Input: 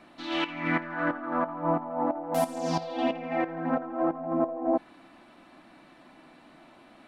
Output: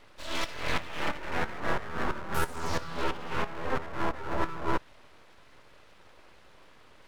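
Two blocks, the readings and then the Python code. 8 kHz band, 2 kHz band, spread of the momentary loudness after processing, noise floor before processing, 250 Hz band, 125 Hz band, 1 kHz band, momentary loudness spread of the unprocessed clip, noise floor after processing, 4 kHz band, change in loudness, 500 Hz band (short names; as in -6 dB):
+2.5 dB, +0.5 dB, 2 LU, -55 dBFS, -9.0 dB, 0.0 dB, -3.0 dB, 2 LU, -55 dBFS, +1.0 dB, -4.0 dB, -6.5 dB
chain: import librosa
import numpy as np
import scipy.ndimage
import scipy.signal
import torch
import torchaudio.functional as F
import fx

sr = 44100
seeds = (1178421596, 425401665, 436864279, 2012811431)

y = np.abs(x)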